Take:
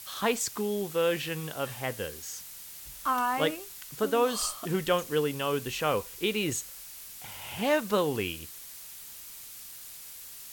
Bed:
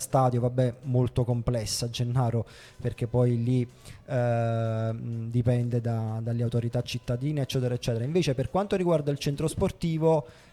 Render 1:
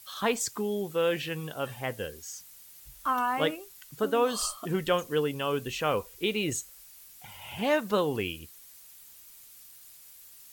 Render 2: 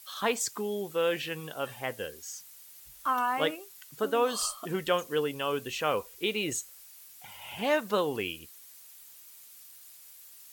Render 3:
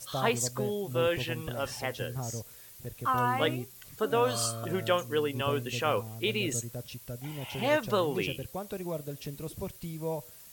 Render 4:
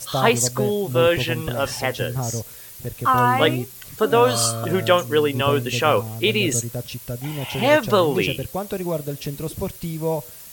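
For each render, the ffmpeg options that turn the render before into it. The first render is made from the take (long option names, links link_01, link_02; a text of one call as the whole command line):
ffmpeg -i in.wav -af "afftdn=noise_reduction=9:noise_floor=-45" out.wav
ffmpeg -i in.wav -af "lowshelf=frequency=170:gain=-11" out.wav
ffmpeg -i in.wav -i bed.wav -filter_complex "[1:a]volume=-11.5dB[link_01];[0:a][link_01]amix=inputs=2:normalize=0" out.wav
ffmpeg -i in.wav -af "volume=10.5dB" out.wav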